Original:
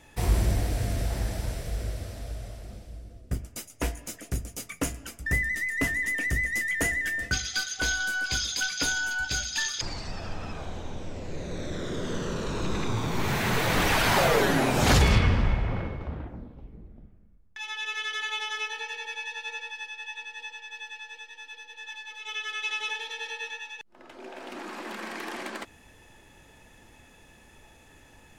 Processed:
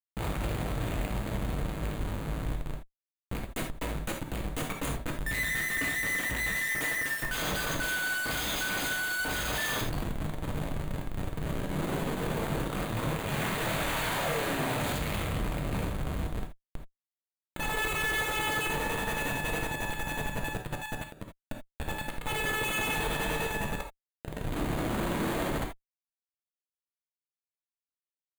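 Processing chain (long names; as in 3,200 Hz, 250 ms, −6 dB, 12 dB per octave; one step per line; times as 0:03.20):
loose part that buzzes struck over −27 dBFS, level −23 dBFS
hard clipping −25 dBFS, distortion −8 dB
0:06.70–0:08.33: high-pass filter 1,300 Hz 6 dB per octave
comparator with hysteresis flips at −34.5 dBFS
parametric band 5,400 Hz −14 dB 0.35 octaves
reverb whose tail is shaped and stops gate 100 ms flat, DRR 1.5 dB
0:20.61–0:21.28: expander for the loud parts 1.5 to 1, over −43 dBFS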